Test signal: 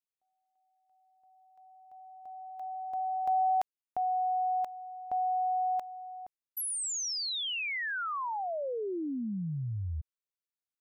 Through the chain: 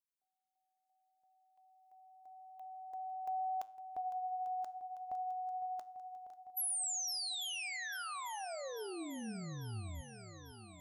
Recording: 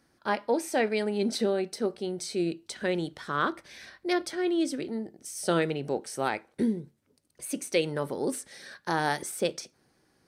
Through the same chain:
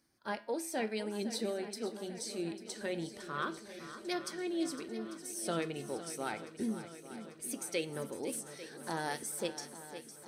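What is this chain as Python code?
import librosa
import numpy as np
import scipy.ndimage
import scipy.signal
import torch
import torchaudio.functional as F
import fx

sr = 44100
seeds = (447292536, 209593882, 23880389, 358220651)

p1 = fx.spec_quant(x, sr, step_db=15)
p2 = fx.high_shelf(p1, sr, hz=5300.0, db=9.0)
p3 = fx.comb_fb(p2, sr, f0_hz=110.0, decay_s=0.51, harmonics='all', damping=0.1, mix_pct=50)
p4 = p3 + fx.echo_swing(p3, sr, ms=845, ratio=1.5, feedback_pct=62, wet_db=-13, dry=0)
y = p4 * 10.0 ** (-4.5 / 20.0)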